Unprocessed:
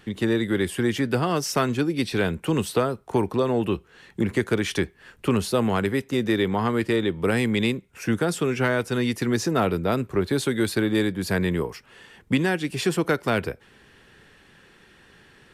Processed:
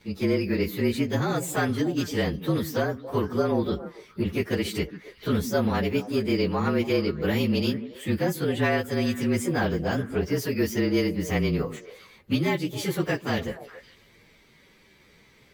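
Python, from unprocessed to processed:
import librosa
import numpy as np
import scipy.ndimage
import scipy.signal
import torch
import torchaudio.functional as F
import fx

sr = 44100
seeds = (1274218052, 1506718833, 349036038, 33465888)

y = fx.partial_stretch(x, sr, pct=111)
y = fx.echo_stepped(y, sr, ms=139, hz=220.0, octaves=1.4, feedback_pct=70, wet_db=-8.5)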